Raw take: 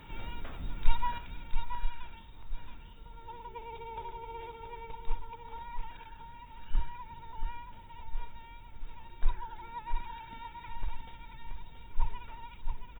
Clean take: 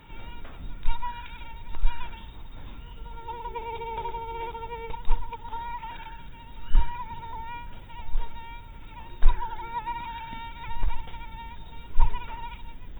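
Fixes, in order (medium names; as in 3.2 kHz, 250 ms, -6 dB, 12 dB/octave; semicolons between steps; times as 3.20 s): inverse comb 677 ms -6.5 dB; gain correction +9.5 dB, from 1.18 s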